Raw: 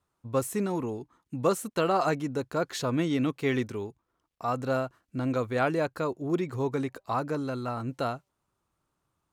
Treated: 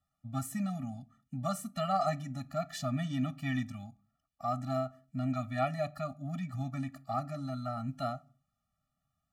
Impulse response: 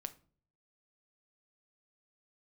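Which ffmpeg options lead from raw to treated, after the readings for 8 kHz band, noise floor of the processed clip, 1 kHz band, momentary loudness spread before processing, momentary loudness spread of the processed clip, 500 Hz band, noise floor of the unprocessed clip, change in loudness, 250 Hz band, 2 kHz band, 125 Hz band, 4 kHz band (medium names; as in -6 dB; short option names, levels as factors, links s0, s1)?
-6.5 dB, -85 dBFS, -4.0 dB, 8 LU, 8 LU, -9.5 dB, -81 dBFS, -6.0 dB, -6.0 dB, -8.5 dB, -2.0 dB, -6.0 dB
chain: -filter_complex "[0:a]asplit=2[s0][s1];[1:a]atrim=start_sample=2205,afade=t=out:st=0.33:d=0.01,atrim=end_sample=14994[s2];[s1][s2]afir=irnorm=-1:irlink=0,volume=1.26[s3];[s0][s3]amix=inputs=2:normalize=0,afftfilt=real='re*eq(mod(floor(b*sr/1024/280),2),0)':imag='im*eq(mod(floor(b*sr/1024/280),2),0)':win_size=1024:overlap=0.75,volume=0.398"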